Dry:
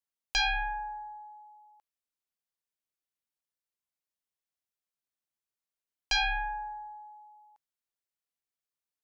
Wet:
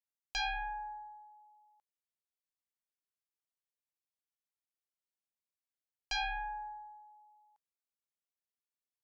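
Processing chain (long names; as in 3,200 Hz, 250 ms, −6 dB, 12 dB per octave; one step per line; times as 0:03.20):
dynamic equaliser 530 Hz, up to +7 dB, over −48 dBFS, Q 0.94
level −9 dB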